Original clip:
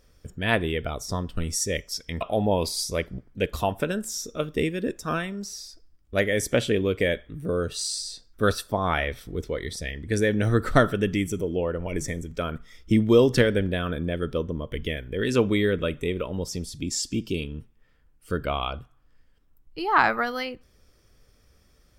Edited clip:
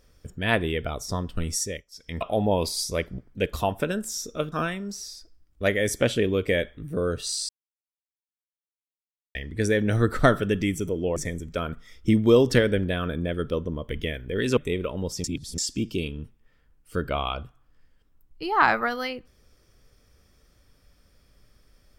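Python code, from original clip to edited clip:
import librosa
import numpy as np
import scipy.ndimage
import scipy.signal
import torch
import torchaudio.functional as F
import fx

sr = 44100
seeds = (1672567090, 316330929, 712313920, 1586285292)

y = fx.edit(x, sr, fx.fade_down_up(start_s=1.57, length_s=0.62, db=-20.0, fade_s=0.28),
    fx.cut(start_s=4.52, length_s=0.52),
    fx.silence(start_s=8.01, length_s=1.86),
    fx.cut(start_s=11.68, length_s=0.31),
    fx.cut(start_s=15.4, length_s=0.53),
    fx.reverse_span(start_s=16.6, length_s=0.34), tone=tone)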